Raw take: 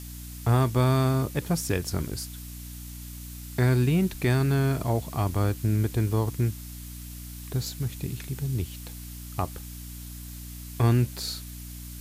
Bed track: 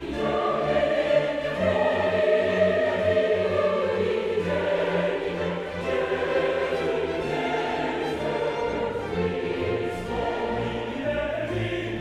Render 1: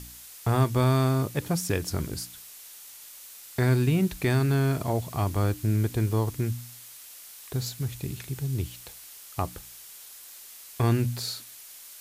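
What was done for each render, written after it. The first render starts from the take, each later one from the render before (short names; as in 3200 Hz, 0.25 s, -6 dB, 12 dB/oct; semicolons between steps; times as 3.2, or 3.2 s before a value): de-hum 60 Hz, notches 5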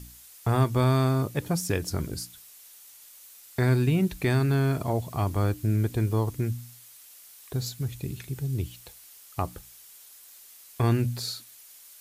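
denoiser 6 dB, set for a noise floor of -47 dBFS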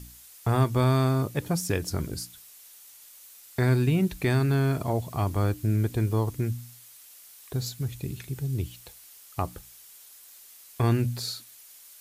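nothing audible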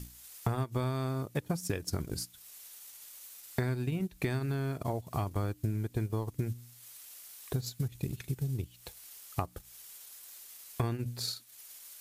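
compressor 4:1, threshold -32 dBFS, peak gain reduction 12.5 dB; transient shaper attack +3 dB, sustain -10 dB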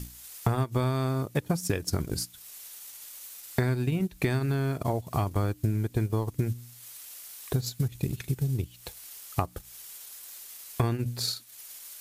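gain +5.5 dB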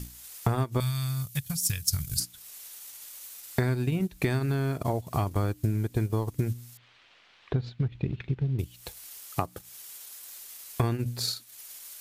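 0.8–2.2 EQ curve 140 Hz 0 dB, 350 Hz -27 dB, 680 Hz -18 dB, 3100 Hz +3 dB, 8200 Hz +8 dB, 13000 Hz +11 dB; 6.77–8.59 LPF 3300 Hz 24 dB/oct; 9.26–10.29 HPF 110 Hz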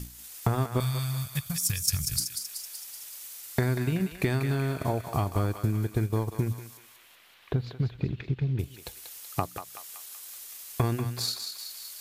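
thinning echo 0.189 s, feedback 62%, high-pass 970 Hz, level -6 dB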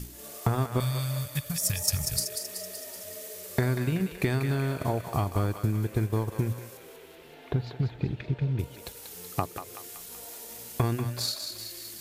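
add bed track -24 dB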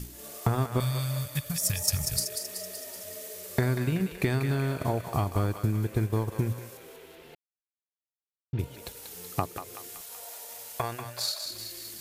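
7.35–8.53 mute; 10.01–11.46 resonant low shelf 430 Hz -11.5 dB, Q 1.5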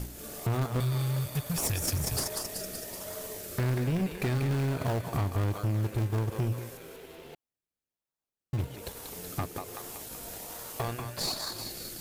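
in parallel at -5.5 dB: decimation with a swept rate 31×, swing 100% 1.2 Hz; on the sum: soft clip -24.5 dBFS, distortion -10 dB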